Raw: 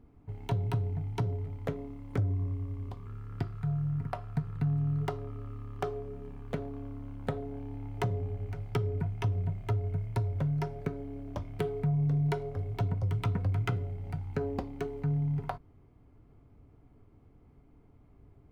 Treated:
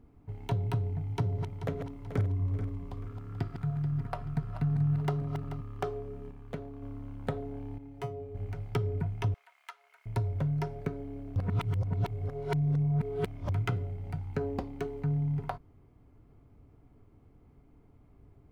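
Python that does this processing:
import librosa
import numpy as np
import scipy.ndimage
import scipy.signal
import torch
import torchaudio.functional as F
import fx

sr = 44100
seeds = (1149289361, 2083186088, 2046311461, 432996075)

y = fx.reverse_delay_fb(x, sr, ms=217, feedback_pct=62, wet_db=-7.5, at=(0.88, 5.61))
y = fx.comb_fb(y, sr, f0_hz=140.0, decay_s=0.18, harmonics='all', damping=0.0, mix_pct=90, at=(7.78, 8.35))
y = fx.highpass(y, sr, hz=1100.0, slope=24, at=(9.34, 10.06))
y = fx.edit(y, sr, fx.clip_gain(start_s=6.31, length_s=0.51, db=-4.0),
    fx.reverse_span(start_s=11.36, length_s=2.13), tone=tone)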